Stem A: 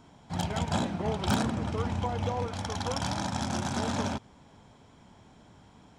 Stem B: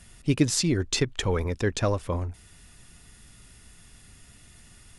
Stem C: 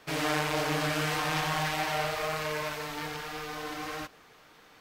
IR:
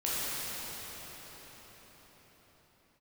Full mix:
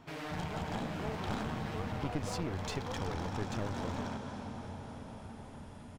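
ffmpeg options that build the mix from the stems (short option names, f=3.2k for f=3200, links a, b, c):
-filter_complex "[0:a]volume=-3dB,asplit=2[a][b];[b]volume=-13dB[c];[1:a]adelay=1750,volume=-5dB[d];[2:a]volume=-7.5dB[e];[3:a]atrim=start_sample=2205[f];[c][f]afir=irnorm=-1:irlink=0[g];[a][d][e][g]amix=inputs=4:normalize=0,highshelf=f=4.6k:g=-10.5,aeval=exprs='clip(val(0),-1,0.0266)':c=same,acompressor=threshold=-44dB:ratio=1.5"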